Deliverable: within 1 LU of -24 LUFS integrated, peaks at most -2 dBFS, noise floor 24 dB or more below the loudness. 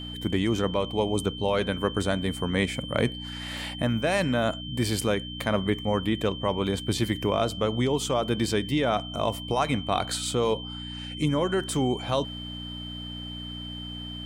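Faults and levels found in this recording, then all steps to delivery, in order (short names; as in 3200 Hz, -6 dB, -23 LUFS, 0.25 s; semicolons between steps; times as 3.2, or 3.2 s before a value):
hum 60 Hz; harmonics up to 300 Hz; hum level -36 dBFS; steady tone 3100 Hz; tone level -38 dBFS; loudness -27.5 LUFS; peak -9.5 dBFS; loudness target -24.0 LUFS
-> de-hum 60 Hz, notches 5; notch 3100 Hz, Q 30; gain +3.5 dB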